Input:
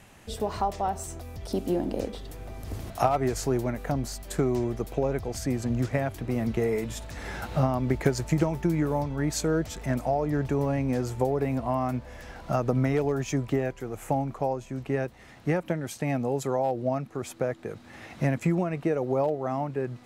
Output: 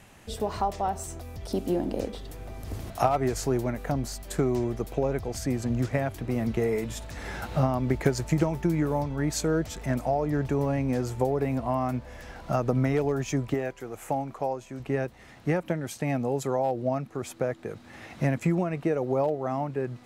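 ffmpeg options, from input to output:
-filter_complex "[0:a]asettb=1/sr,asplit=3[s0][s1][s2];[s0]atrim=end=13.544[s3];[s1]atrim=start=13.54:end=14.8,asetpts=PTS-STARTPTS,afade=t=in:d=0.004:c=qsin,afade=t=out:st=1.256:d=0.004:c=qsin,lowshelf=f=240:g=-8.5[s4];[s2]atrim=start=14.796[s5];[s3][s4]acrossfade=d=0.004:c1=hsin:c2=qsin[s6];[s6][s5]acrossfade=d=0.004:c1=qsin:c2=hsin"

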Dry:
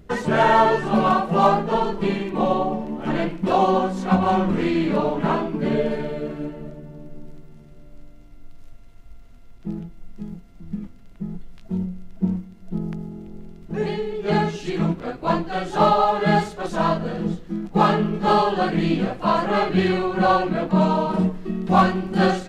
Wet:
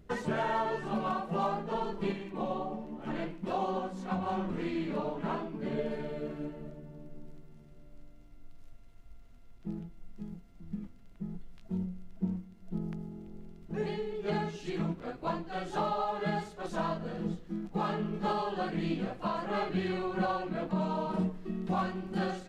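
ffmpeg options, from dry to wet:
-filter_complex "[0:a]asettb=1/sr,asplit=3[s0][s1][s2];[s0]atrim=end=2.124[s3];[s1]atrim=start=2.12:end=5.79,asetpts=PTS-STARTPTS,afade=t=in:d=0.004:c=qsin,afade=t=out:st=3.666:d=0.004:c=qsin,flanger=delay=5.4:depth=9.7:regen=-55:speed=1.2:shape=triangular[s4];[s2]atrim=start=5.786[s5];[s3][s4]acrossfade=d=0.004:c1=hsin:c2=qsin[s6];[s6][s5]acrossfade=d=0.004:c1=qsin:c2=hsin,alimiter=limit=0.224:level=0:latency=1:release=466,volume=0.355"

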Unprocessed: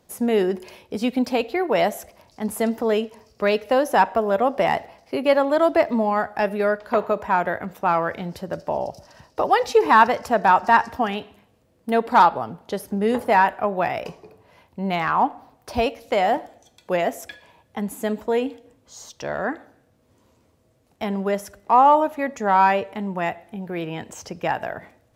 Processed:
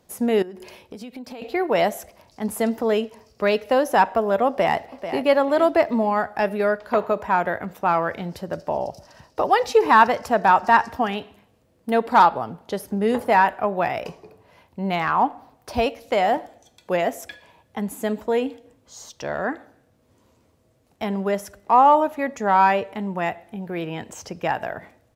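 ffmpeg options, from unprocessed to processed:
-filter_complex "[0:a]asettb=1/sr,asplit=3[s0][s1][s2];[s0]atrim=end=0.424[s3];[s1]atrim=start=0.42:end=1.42,asetpts=PTS-STARTPTS,afade=t=in:d=0.004:c=qsin,afade=t=out:st=0.996:d=0.004:c=qsin,acompressor=threshold=0.0224:ratio=12:attack=3.2:release=140:knee=1:detection=peak[s4];[s2]atrim=start=1.416[s5];[s3][s4]acrossfade=d=0.004:c1=hsin:c2=qsin[s6];[s6][s5]acrossfade=d=0.004:c1=qsin:c2=hsin,asplit=2[s7][s8];[s8]afade=t=in:st=4.48:d=0.01,afade=t=out:st=5.25:d=0.01,aecho=0:1:440|880|1320:0.298538|0.0746346|0.0186586[s9];[s7][s9]amix=inputs=2:normalize=0"

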